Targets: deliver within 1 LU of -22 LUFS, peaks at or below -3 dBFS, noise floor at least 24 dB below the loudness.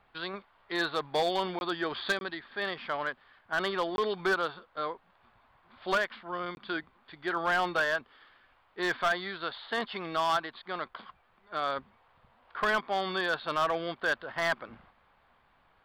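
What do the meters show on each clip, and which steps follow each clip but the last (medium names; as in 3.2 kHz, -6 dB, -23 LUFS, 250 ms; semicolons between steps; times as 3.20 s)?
clipped samples 0.9%; clipping level -21.5 dBFS; dropouts 4; longest dropout 21 ms; loudness -32.0 LUFS; peak level -21.5 dBFS; loudness target -22.0 LUFS
-> clip repair -21.5 dBFS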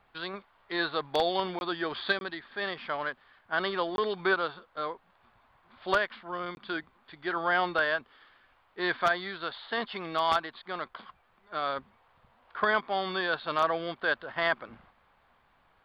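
clipped samples 0.0%; dropouts 4; longest dropout 21 ms
-> interpolate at 1.59/2.19/3.96/6.55 s, 21 ms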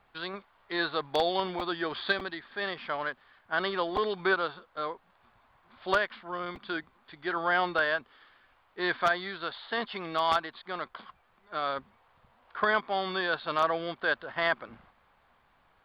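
dropouts 0; loudness -31.0 LUFS; peak level -12.5 dBFS; loudness target -22.0 LUFS
-> trim +9 dB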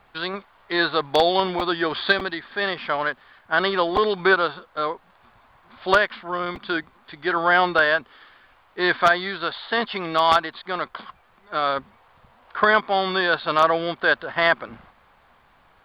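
loudness -22.0 LUFS; peak level -3.5 dBFS; noise floor -58 dBFS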